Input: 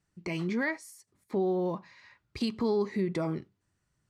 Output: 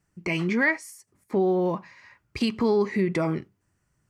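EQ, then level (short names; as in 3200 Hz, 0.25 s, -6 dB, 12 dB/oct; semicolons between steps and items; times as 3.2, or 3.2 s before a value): bell 3800 Hz -8.5 dB 0.57 oct; dynamic EQ 2700 Hz, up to +7 dB, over -53 dBFS, Q 0.78; +5.5 dB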